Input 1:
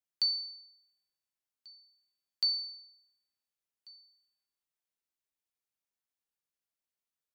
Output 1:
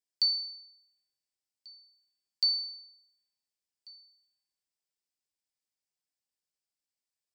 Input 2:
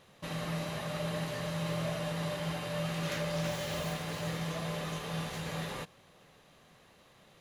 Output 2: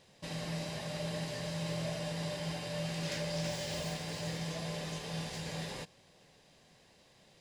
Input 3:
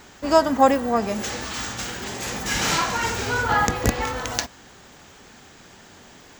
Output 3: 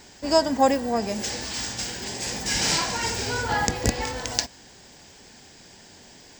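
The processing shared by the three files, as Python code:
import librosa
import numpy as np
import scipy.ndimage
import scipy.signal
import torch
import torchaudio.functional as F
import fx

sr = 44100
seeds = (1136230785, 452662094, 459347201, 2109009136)

y = fx.graphic_eq_31(x, sr, hz=(1250, 5000, 8000, 12500), db=(-11, 9, 7, -7))
y = F.gain(torch.from_numpy(y), -2.5).numpy()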